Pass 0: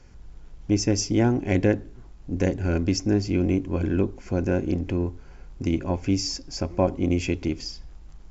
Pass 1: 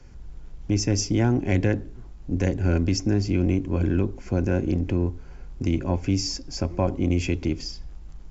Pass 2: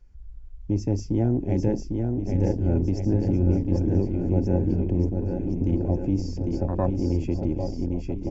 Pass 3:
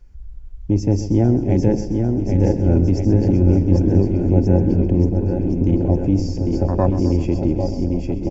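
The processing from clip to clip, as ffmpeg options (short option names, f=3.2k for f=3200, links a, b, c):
-filter_complex "[0:a]lowshelf=f=340:g=4,acrossover=split=130|790[a][b][c];[b]alimiter=limit=-16.5dB:level=0:latency=1[d];[a][d][c]amix=inputs=3:normalize=0"
-af "aecho=1:1:800|1480|2058|2549|2967:0.631|0.398|0.251|0.158|0.1,afwtdn=0.0501,volume=-1.5dB"
-af "aecho=1:1:130|260|390|520|650|780:0.224|0.13|0.0753|0.0437|0.0253|0.0147,volume=7dB"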